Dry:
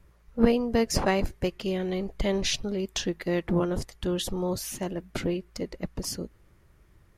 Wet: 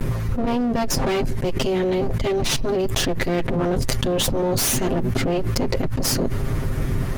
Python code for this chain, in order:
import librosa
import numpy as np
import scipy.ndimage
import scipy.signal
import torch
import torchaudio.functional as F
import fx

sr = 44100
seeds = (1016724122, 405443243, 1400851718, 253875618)

y = fx.lower_of_two(x, sr, delay_ms=7.6)
y = fx.low_shelf(y, sr, hz=480.0, db=9.0)
y = fx.env_flatten(y, sr, amount_pct=100)
y = y * librosa.db_to_amplitude(-8.5)